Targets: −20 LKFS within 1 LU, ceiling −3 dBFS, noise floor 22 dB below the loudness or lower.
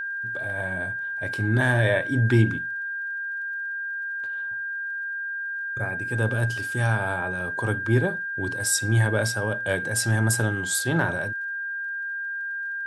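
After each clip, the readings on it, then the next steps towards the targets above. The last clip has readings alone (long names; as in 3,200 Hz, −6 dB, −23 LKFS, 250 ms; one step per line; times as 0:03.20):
crackle rate 23 per second; interfering tone 1,600 Hz; level of the tone −28 dBFS; integrated loudness −25.5 LKFS; sample peak −7.5 dBFS; target loudness −20.0 LKFS
→ click removal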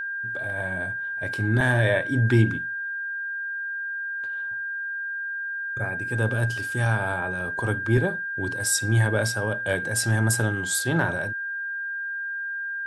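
crackle rate 0 per second; interfering tone 1,600 Hz; level of the tone −28 dBFS
→ notch filter 1,600 Hz, Q 30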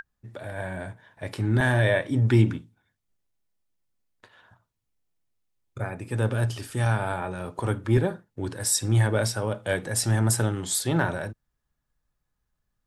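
interfering tone none found; integrated loudness −25.5 LKFS; sample peak −7.5 dBFS; target loudness −20.0 LKFS
→ level +5.5 dB
brickwall limiter −3 dBFS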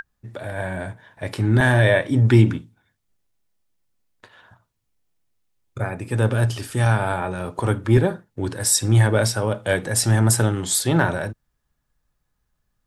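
integrated loudness −20.0 LKFS; sample peak −3.0 dBFS; background noise floor −74 dBFS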